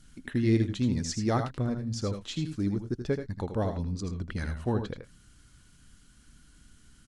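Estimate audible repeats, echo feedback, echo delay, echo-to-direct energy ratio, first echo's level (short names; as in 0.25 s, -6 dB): 1, no steady repeat, 80 ms, -7.0 dB, -8.0 dB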